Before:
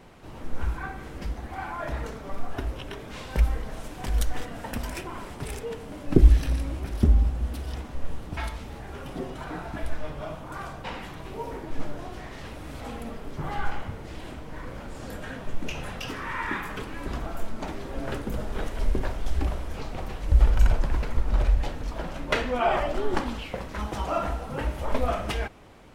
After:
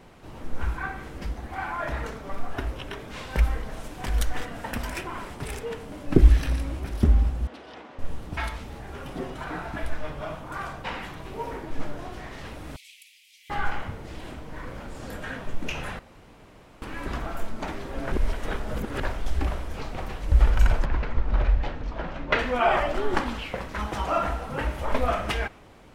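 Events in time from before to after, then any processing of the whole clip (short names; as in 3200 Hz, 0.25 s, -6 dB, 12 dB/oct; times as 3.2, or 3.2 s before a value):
7.47–7.99 BPF 350–3500 Hz
12.76–13.5 steep high-pass 2200 Hz 72 dB/oct
15.99–16.82 room tone
18.12–19 reverse
20.85–22.39 air absorption 150 m
whole clip: dynamic EQ 1700 Hz, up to +5 dB, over -44 dBFS, Q 0.71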